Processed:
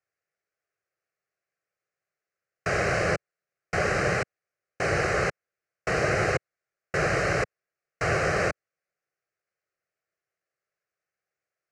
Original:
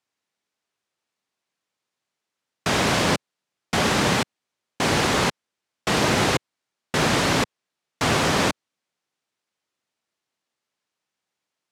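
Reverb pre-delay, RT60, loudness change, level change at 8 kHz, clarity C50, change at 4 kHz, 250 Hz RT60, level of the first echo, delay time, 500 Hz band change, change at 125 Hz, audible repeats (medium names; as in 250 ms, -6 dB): no reverb, no reverb, -4.5 dB, -11.0 dB, no reverb, -14.5 dB, no reverb, no echo, no echo, -1.5 dB, -4.0 dB, no echo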